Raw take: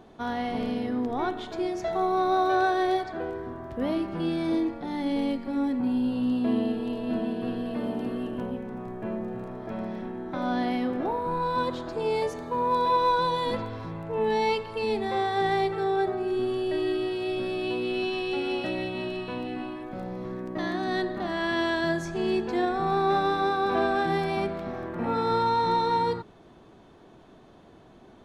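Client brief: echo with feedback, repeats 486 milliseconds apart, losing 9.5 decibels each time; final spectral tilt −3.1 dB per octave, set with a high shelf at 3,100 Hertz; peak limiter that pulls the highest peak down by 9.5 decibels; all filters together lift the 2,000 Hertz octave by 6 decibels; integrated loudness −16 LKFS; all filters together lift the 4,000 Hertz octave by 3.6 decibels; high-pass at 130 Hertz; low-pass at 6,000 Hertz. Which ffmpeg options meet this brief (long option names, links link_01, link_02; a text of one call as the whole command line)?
ffmpeg -i in.wav -af "highpass=130,lowpass=6000,equalizer=frequency=2000:width_type=o:gain=8.5,highshelf=frequency=3100:gain=-5,equalizer=frequency=4000:width_type=o:gain=5.5,alimiter=limit=-21.5dB:level=0:latency=1,aecho=1:1:486|972|1458|1944:0.335|0.111|0.0365|0.012,volume=14dB" out.wav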